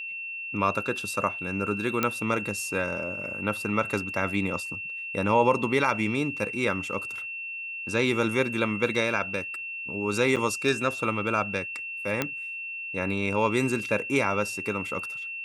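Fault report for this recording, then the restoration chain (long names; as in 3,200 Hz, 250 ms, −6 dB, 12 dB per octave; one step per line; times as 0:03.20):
whistle 2,700 Hz −33 dBFS
0:02.03: click −9 dBFS
0:10.36–0:10.37: drop-out 7.1 ms
0:12.22: click −10 dBFS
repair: click removal
notch filter 2,700 Hz, Q 30
repair the gap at 0:10.36, 7.1 ms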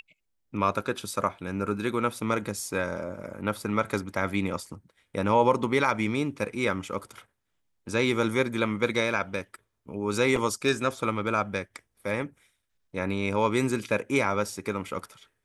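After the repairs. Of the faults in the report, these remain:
0:02.03: click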